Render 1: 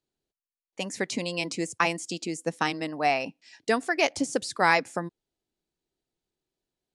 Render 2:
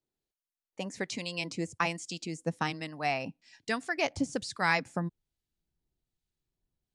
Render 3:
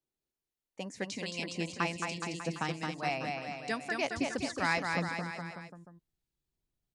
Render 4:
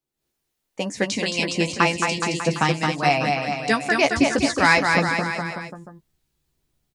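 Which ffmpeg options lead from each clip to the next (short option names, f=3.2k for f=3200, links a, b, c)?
-filter_complex "[0:a]asubboost=boost=5.5:cutoff=160,acrossover=split=1300[a][b];[a]aeval=exprs='val(0)*(1-0.5/2+0.5/2*cos(2*PI*1.2*n/s))':c=same[c];[b]aeval=exprs='val(0)*(1-0.5/2-0.5/2*cos(2*PI*1.2*n/s))':c=same[d];[c][d]amix=inputs=2:normalize=0,acrossover=split=8700[e][f];[f]acompressor=threshold=-60dB:ratio=4:attack=1:release=60[g];[e][g]amix=inputs=2:normalize=0,volume=-2.5dB"
-af "aecho=1:1:220|418|596.2|756.6|900.9:0.631|0.398|0.251|0.158|0.1,volume=-3.5dB"
-filter_complex "[0:a]asplit=2[a][b];[b]adelay=14,volume=-7.5dB[c];[a][c]amix=inputs=2:normalize=0,dynaudnorm=f=130:g=3:m=10.5dB,volume=3dB"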